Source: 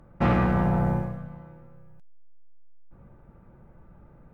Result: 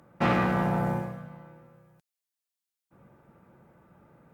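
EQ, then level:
Bessel high-pass filter 170 Hz, order 2
high-shelf EQ 2,400 Hz +8.5 dB
−1.0 dB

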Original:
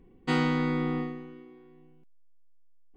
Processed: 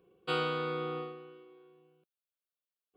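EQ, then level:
high-pass filter 230 Hz 12 dB per octave
phaser with its sweep stopped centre 1,300 Hz, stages 8
+1.0 dB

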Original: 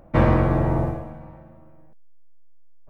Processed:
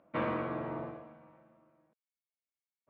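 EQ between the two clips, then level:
loudspeaker in its box 330–3,500 Hz, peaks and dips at 370 Hz −6 dB, 540 Hz −5 dB, 800 Hz −10 dB, 1,800 Hz −5 dB
−7.5 dB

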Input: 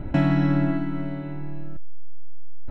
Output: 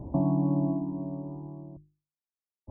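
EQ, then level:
high-pass filter 47 Hz
linear-phase brick-wall low-pass 1,200 Hz
mains-hum notches 50/100/150/200/250/300/350 Hz
−4.0 dB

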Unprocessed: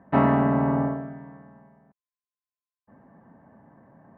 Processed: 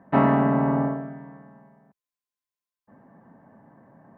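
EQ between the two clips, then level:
parametric band 69 Hz −15 dB 0.45 octaves
+1.0 dB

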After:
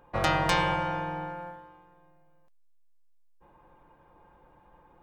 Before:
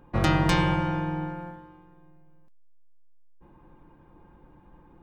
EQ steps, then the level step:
low shelf with overshoot 410 Hz −8 dB, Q 1.5
0.0 dB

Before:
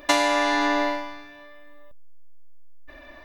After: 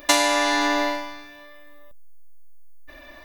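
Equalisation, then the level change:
high-shelf EQ 5,000 Hz +12 dB
0.0 dB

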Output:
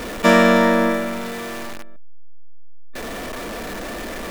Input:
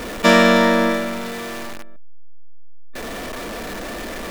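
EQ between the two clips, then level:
dynamic equaliser 4,200 Hz, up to −6 dB, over −35 dBFS, Q 0.96
0.0 dB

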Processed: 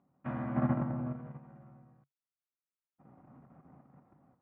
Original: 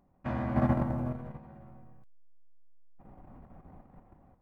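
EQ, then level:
loudspeaker in its box 130–3,000 Hz, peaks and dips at 140 Hz +9 dB, 260 Hz +5 dB, 1,300 Hz +6 dB
−6.0 dB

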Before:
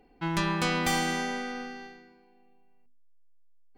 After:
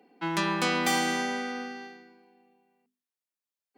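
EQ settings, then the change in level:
Butterworth high-pass 180 Hz 48 dB per octave
+1.5 dB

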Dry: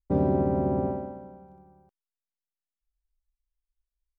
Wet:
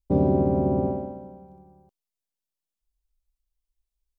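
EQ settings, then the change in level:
parametric band 1,600 Hz −11.5 dB 0.98 octaves
+3.5 dB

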